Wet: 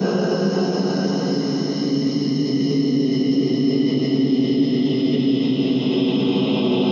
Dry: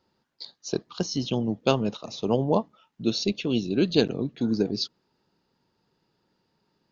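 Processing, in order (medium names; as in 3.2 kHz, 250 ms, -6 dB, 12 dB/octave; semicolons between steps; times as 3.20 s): Paulstretch 30×, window 0.25 s, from 1.05 s; in parallel at 0 dB: compressor with a negative ratio -32 dBFS; on the sum: harmonic-percussive split harmonic -7 dB; reverberation RT60 0.60 s, pre-delay 3 ms, DRR -14 dB; three bands compressed up and down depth 40%; trim -6.5 dB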